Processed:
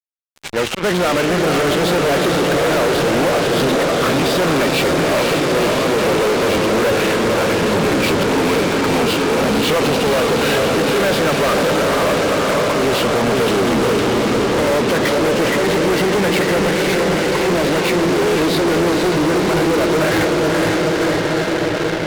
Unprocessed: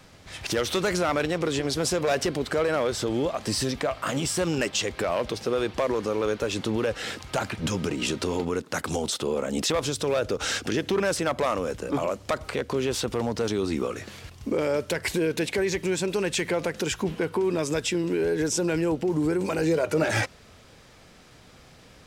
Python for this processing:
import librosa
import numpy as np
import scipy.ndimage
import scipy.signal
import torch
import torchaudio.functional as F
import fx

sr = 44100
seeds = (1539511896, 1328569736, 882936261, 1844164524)

y = fx.freq_compress(x, sr, knee_hz=1700.0, ratio=1.5)
y = fx.rider(y, sr, range_db=10, speed_s=2.0)
y = fx.auto_swell(y, sr, attack_ms=134.0)
y = fx.cheby_harmonics(y, sr, harmonics=(6,), levels_db=(-21,), full_scale_db=-13.0)
y = fx.bandpass_edges(y, sr, low_hz=130.0, high_hz=2900.0)
y = fx.echo_diffused(y, sr, ms=500, feedback_pct=78, wet_db=-3.5)
y = fx.fuzz(y, sr, gain_db=34.0, gate_db=-36.0)